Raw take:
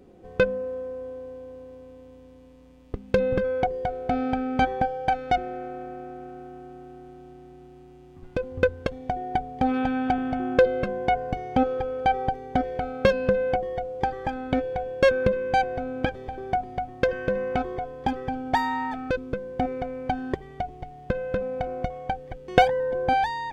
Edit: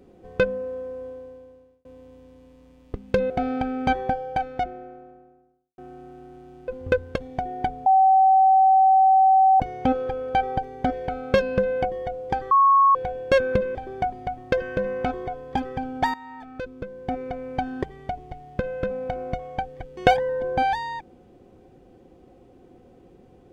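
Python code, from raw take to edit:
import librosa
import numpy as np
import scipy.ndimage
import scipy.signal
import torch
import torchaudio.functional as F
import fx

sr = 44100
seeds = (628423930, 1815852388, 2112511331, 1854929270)

y = fx.studio_fade_out(x, sr, start_s=4.63, length_s=1.87)
y = fx.edit(y, sr, fx.fade_out_span(start_s=1.06, length_s=0.79),
    fx.cut(start_s=3.3, length_s=0.72),
    fx.cut(start_s=7.4, length_s=0.99),
    fx.bleep(start_s=9.57, length_s=1.74, hz=765.0, db=-12.5),
    fx.bleep(start_s=14.22, length_s=0.44, hz=1100.0, db=-12.5),
    fx.cut(start_s=15.46, length_s=0.8),
    fx.fade_in_from(start_s=18.65, length_s=1.38, floor_db=-16.5), tone=tone)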